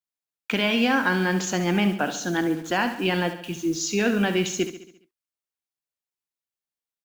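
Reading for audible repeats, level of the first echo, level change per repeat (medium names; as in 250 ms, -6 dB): 5, -11.0 dB, -5.5 dB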